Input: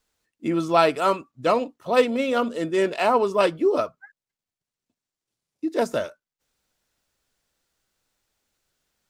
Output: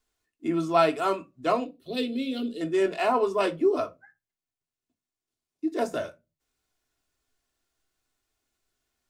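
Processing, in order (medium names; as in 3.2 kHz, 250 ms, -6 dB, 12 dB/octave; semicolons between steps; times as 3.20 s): 1.65–2.61 s: FFT filter 420 Hz 0 dB, 990 Hz -26 dB, 4.1 kHz +7 dB, 6.1 kHz -12 dB, 11 kHz 0 dB; reverberation RT60 0.25 s, pre-delay 3 ms, DRR 3.5 dB; trim -6 dB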